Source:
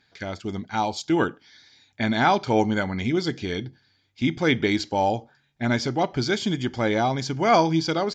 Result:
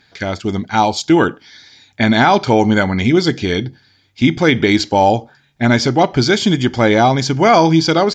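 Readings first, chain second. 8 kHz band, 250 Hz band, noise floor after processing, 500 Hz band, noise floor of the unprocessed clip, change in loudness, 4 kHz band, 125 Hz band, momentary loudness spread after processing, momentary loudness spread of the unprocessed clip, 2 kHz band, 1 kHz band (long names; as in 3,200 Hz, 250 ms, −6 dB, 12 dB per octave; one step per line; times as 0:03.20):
can't be measured, +10.5 dB, −56 dBFS, +9.5 dB, −67 dBFS, +10.0 dB, +10.5 dB, +10.5 dB, 8 LU, 11 LU, +9.5 dB, +9.0 dB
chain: boost into a limiter +12 dB
level −1 dB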